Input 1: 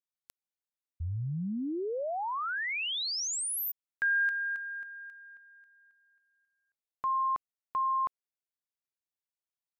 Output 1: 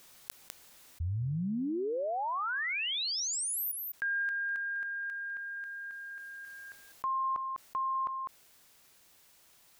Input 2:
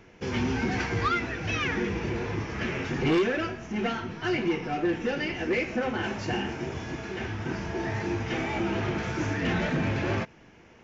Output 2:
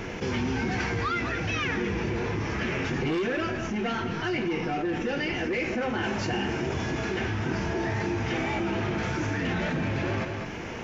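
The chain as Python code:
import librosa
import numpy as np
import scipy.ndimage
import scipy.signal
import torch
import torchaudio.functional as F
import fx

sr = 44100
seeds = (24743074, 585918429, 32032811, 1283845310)

y = fx.rider(x, sr, range_db=4, speed_s=2.0)
y = y + 10.0 ** (-16.0 / 20.0) * np.pad(y, (int(201 * sr / 1000.0), 0))[:len(y)]
y = fx.env_flatten(y, sr, amount_pct=70)
y = y * librosa.db_to_amplitude(-5.5)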